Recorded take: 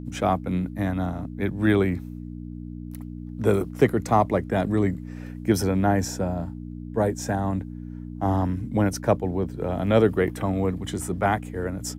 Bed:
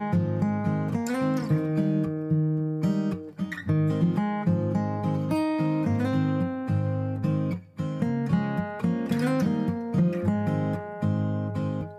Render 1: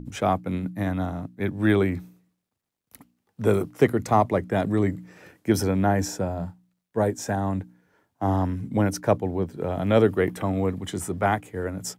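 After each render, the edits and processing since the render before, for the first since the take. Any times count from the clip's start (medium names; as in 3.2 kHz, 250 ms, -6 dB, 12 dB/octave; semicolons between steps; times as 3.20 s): de-hum 60 Hz, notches 5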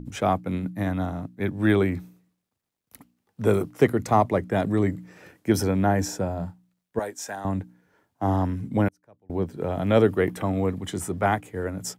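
6.99–7.45 s: high-pass 1.3 kHz 6 dB/octave; 8.88–9.30 s: inverted gate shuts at -26 dBFS, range -34 dB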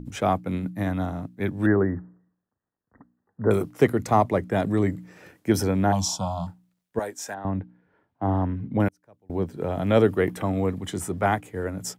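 1.66–3.51 s: Chebyshev low-pass 1.9 kHz, order 8; 5.92–6.47 s: FFT filter 200 Hz 0 dB, 410 Hz -23 dB, 650 Hz +1 dB, 1.1 kHz +13 dB, 1.8 kHz -29 dB, 3.2 kHz +14 dB, 15 kHz -4 dB; 7.34–8.80 s: distance through air 330 m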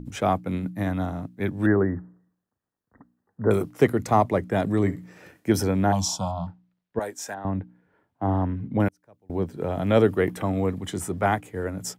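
4.78–5.50 s: flutter echo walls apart 11.6 m, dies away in 0.23 s; 6.31–7.01 s: distance through air 200 m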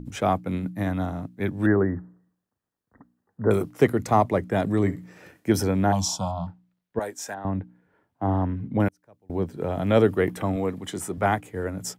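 10.56–11.18 s: high-pass 190 Hz 6 dB/octave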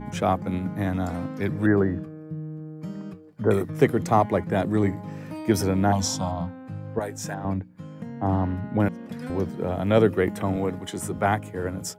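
add bed -10 dB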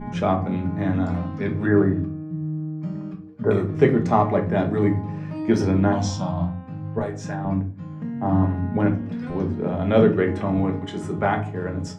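distance through air 130 m; simulated room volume 230 m³, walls furnished, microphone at 1.3 m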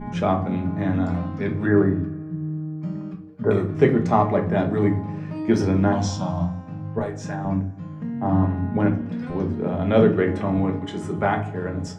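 plate-style reverb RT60 2 s, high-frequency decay 0.7×, DRR 18.5 dB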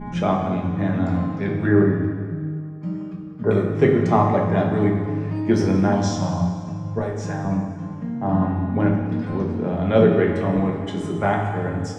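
plate-style reverb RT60 1.9 s, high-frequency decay 0.95×, DRR 4 dB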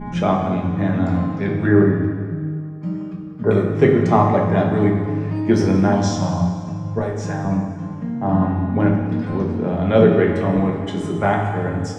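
trim +2.5 dB; peak limiter -1 dBFS, peak gain reduction 1 dB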